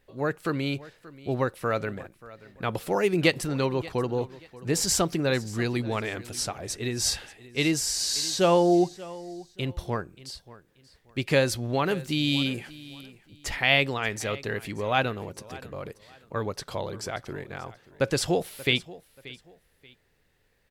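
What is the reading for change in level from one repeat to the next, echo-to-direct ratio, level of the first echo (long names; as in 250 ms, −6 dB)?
−11.0 dB, −18.5 dB, −19.0 dB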